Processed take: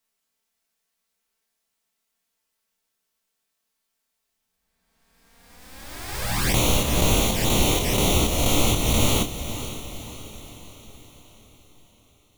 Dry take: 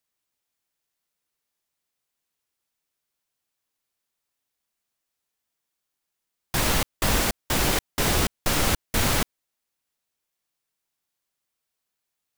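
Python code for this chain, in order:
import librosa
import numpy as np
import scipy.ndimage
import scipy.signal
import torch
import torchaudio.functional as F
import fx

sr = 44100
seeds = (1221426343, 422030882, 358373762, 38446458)

y = fx.spec_swells(x, sr, rise_s=1.93)
y = fx.room_early_taps(y, sr, ms=(17, 27), db=(-8.5, -6.0))
y = fx.env_flanger(y, sr, rest_ms=4.5, full_db=-16.0)
y = fx.rider(y, sr, range_db=10, speed_s=0.5)
y = fx.echo_diffused(y, sr, ms=518, feedback_pct=51, wet_db=-11.5)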